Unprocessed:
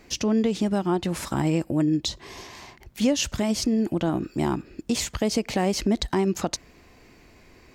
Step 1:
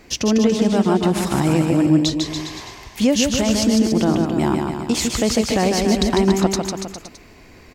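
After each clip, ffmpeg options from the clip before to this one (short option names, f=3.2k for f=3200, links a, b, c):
-af "aecho=1:1:150|285|406.5|515.8|614.3:0.631|0.398|0.251|0.158|0.1,volume=5dB"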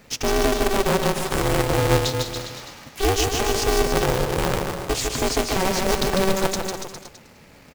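-af "acrusher=bits=3:mode=log:mix=0:aa=0.000001,aecho=1:1:204:0.188,aeval=exprs='val(0)*sgn(sin(2*PI*190*n/s))':c=same,volume=-4dB"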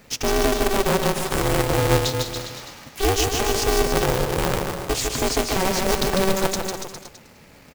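-af "highshelf=f=10k:g=3.5"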